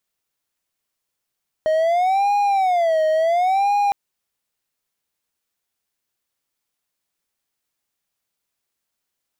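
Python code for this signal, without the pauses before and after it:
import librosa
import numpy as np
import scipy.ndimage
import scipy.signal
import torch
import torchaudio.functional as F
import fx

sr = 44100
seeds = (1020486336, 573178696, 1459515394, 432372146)

y = fx.siren(sr, length_s=2.26, kind='wail', low_hz=626.0, high_hz=818.0, per_s=0.71, wave='triangle', level_db=-13.0)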